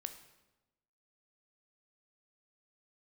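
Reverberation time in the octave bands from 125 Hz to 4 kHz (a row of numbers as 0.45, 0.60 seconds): 1.2, 1.2, 1.1, 1.0, 0.90, 0.80 seconds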